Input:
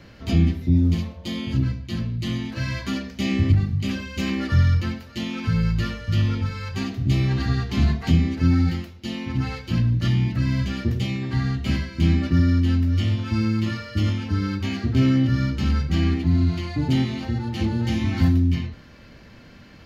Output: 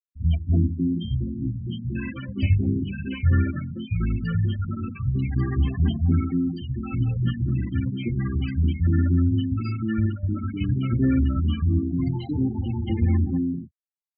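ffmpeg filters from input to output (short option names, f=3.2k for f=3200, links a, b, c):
-filter_complex "[0:a]atempo=1.4,afftfilt=real='re*gte(hypot(re,im),0.0708)':imag='im*gte(hypot(re,im),0.0708)':win_size=1024:overlap=0.75,acrossover=split=150|740[a][b][c];[c]adelay=110[d];[b]adelay=310[e];[a][e][d]amix=inputs=3:normalize=0"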